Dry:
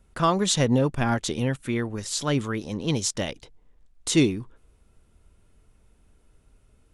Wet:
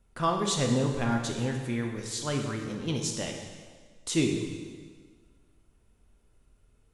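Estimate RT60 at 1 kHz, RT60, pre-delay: 1.6 s, 1.6 s, 4 ms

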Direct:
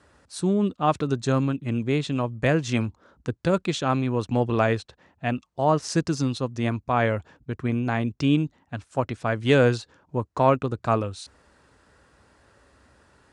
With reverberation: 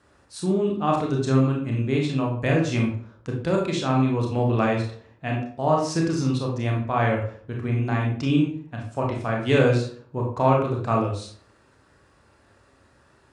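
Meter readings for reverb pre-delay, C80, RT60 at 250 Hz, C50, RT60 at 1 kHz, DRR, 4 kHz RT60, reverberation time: 26 ms, 8.5 dB, 0.60 s, 4.5 dB, 0.50 s, -1.0 dB, 0.35 s, 0.55 s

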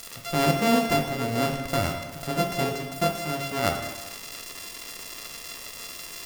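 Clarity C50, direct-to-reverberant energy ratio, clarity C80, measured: 6.0 dB, 3.0 dB, 8.0 dB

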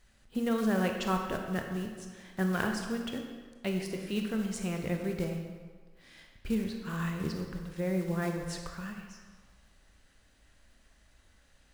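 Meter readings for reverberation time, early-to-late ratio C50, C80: 1.5 s, 4.5 dB, 6.0 dB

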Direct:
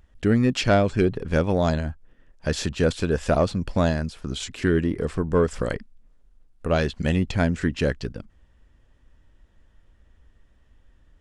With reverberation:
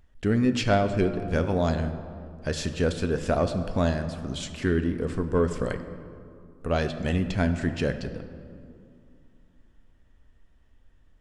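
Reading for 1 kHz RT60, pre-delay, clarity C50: 2.5 s, 4 ms, 10.0 dB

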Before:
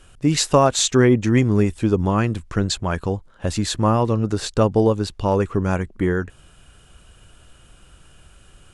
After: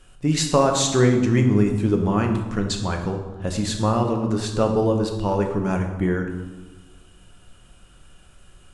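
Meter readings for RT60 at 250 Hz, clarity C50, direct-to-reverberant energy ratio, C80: 1.8 s, 6.5 dB, 3.0 dB, 8.5 dB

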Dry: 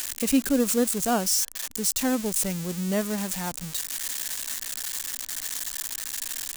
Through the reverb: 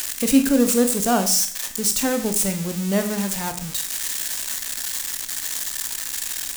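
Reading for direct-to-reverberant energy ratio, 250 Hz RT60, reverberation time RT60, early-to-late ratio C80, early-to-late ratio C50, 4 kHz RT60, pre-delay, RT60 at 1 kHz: 6.5 dB, 0.50 s, 0.50 s, 14.0 dB, 10.0 dB, 0.50 s, 23 ms, 0.50 s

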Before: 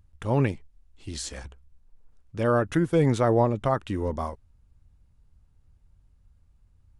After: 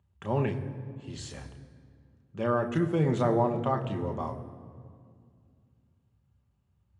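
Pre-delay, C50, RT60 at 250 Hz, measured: 3 ms, 11.0 dB, 3.0 s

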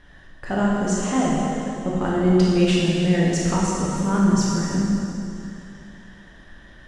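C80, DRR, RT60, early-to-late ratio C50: -0.5 dB, -6.0 dB, 2.9 s, -2.5 dB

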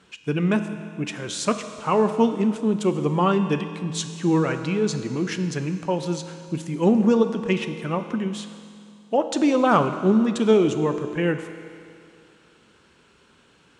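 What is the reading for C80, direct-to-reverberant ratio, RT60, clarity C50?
10.5 dB, 8.0 dB, 2.4 s, 9.5 dB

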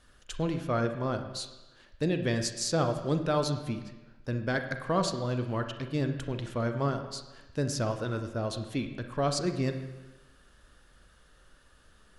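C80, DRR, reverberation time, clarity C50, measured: 10.5 dB, 6.5 dB, 1.1 s, 8.0 dB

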